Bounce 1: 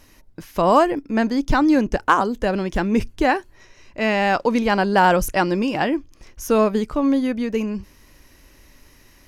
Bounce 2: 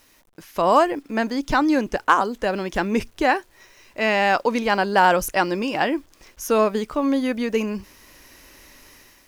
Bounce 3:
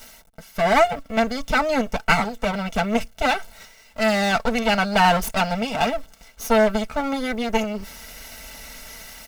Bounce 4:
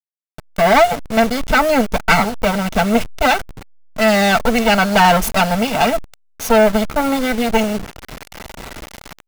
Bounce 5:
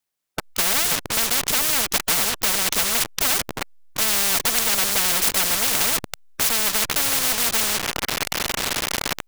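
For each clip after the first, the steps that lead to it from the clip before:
level rider gain up to 9 dB; bit crusher 9-bit; bass shelf 230 Hz -11.5 dB; trim -3 dB
comb filter that takes the minimum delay 1.4 ms; comb 4.5 ms, depth 59%; reverse; upward compressor, threshold -29 dBFS; reverse
send-on-delta sampling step -30.5 dBFS; waveshaping leveller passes 2
spectrum-flattening compressor 10:1; trim -1.5 dB

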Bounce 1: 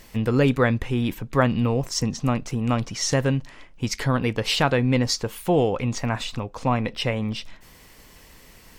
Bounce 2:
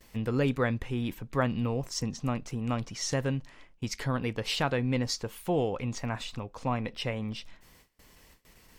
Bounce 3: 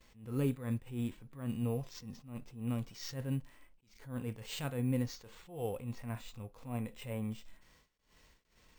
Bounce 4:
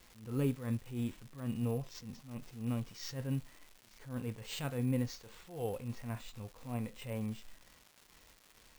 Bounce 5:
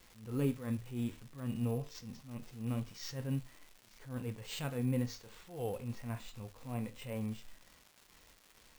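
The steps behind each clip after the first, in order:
gate with hold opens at -38 dBFS; trim -8 dB
harmonic-percussive split percussive -14 dB; sample-and-hold 4×; attacks held to a fixed rise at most 120 dB/s; trim -3 dB
crackle 400 per s -47 dBFS
flange 0.25 Hz, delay 9.8 ms, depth 7.3 ms, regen -73%; trim +4 dB

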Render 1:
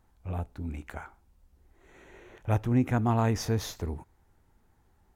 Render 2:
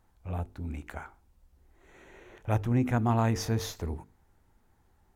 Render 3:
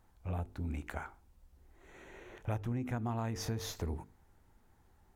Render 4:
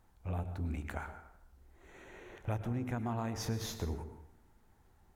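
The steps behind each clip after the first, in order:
hum notches 50/100/150/200/250/300/350/400/450 Hz
compression 12:1, threshold -32 dBFS, peak gain reduction 12 dB
plate-style reverb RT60 0.82 s, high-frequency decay 0.6×, pre-delay 95 ms, DRR 10 dB

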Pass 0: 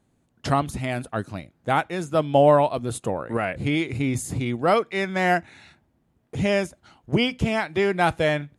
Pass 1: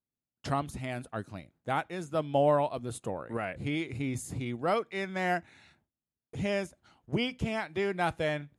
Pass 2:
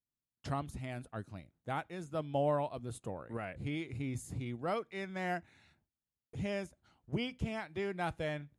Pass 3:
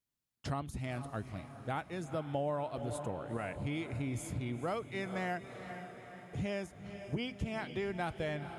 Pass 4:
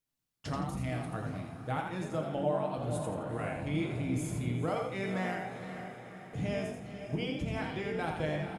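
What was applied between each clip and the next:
gate with hold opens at -47 dBFS; trim -9 dB
bass shelf 130 Hz +8 dB; trim -7.5 dB
echo that smears into a reverb 468 ms, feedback 57%, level -13 dB; compression 3:1, threshold -37 dBFS, peak gain reduction 8 dB; trim +3.5 dB
frequency-shifting echo 83 ms, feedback 34%, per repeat +46 Hz, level -5 dB; on a send at -4.5 dB: reverberation RT60 0.60 s, pre-delay 6 ms

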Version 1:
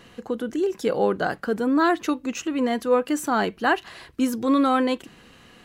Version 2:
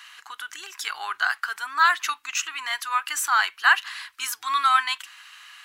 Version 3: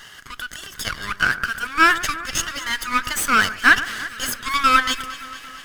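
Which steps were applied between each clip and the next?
inverse Chebyshev high-pass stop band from 560 Hz, stop band 40 dB; trim +7.5 dB
comb filter that takes the minimum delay 0.62 ms; echo whose repeats swap between lows and highs 114 ms, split 2 kHz, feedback 80%, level -14 dB; trim +5 dB

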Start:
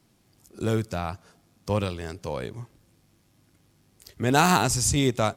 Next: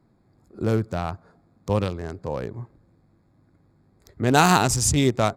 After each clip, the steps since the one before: local Wiener filter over 15 samples; trim +3 dB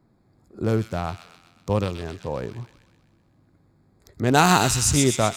feedback echo behind a high-pass 127 ms, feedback 58%, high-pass 2.5 kHz, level -3.5 dB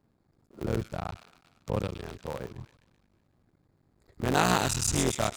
cycle switcher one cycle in 3, muted; trim -6 dB

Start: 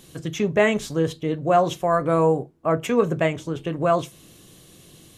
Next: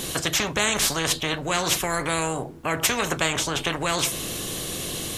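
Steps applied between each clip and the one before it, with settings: spectrum-flattening compressor 4:1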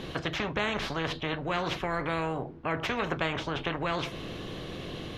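distance through air 310 m; trim -3.5 dB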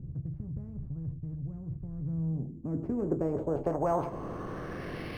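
low-pass sweep 120 Hz -> 2.4 kHz, 1.90–5.17 s; decimation joined by straight lines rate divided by 6×

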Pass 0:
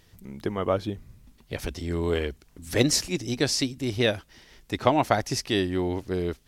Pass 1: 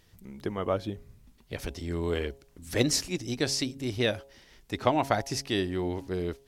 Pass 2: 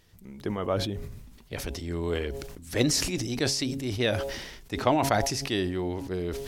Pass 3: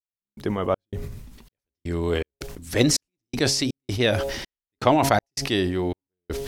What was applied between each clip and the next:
de-hum 137.5 Hz, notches 7; trim -3.5 dB
decay stretcher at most 44 dB/s
trance gate "..xx.xxx" 81 bpm -60 dB; trim +5 dB

